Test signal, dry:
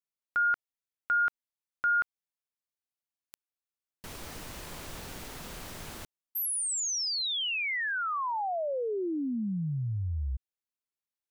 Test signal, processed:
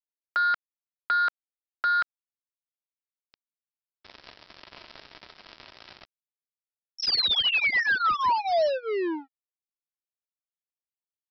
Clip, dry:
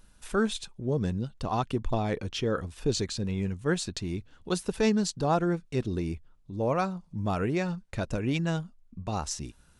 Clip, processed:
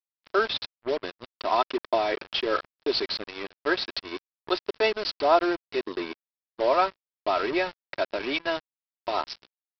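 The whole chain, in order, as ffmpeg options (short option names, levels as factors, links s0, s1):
-af "highpass=f=410:w=0.5412,highpass=f=410:w=1.3066,aecho=1:1:3.1:0.65,aresample=11025,acrusher=bits=5:mix=0:aa=0.5,aresample=44100,volume=1.88"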